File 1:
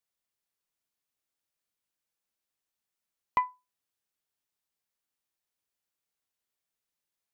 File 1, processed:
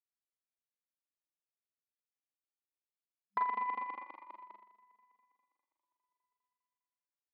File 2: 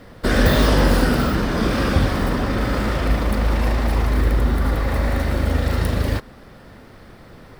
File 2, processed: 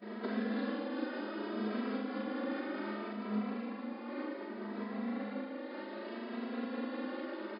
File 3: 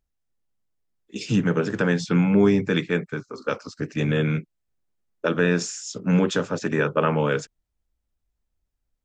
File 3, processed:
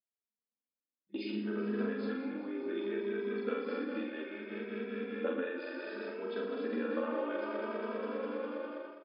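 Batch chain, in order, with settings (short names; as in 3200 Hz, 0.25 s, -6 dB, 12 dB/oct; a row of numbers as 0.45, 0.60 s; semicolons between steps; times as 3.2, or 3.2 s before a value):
regenerating reverse delay 0.101 s, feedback 84%, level -6.5 dB; gate -44 dBFS, range -17 dB; low shelf 390 Hz +6.5 dB; compressor 8:1, threshold -30 dBFS; air absorption 140 m; loudspeakers at several distances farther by 13 m -6 dB, 41 m -10 dB; FFT band-pass 200–5100 Hz; doubler 47 ms -6.5 dB; endless flanger 2.7 ms +0.65 Hz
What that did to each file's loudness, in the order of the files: -4.0, -19.0, -14.0 LU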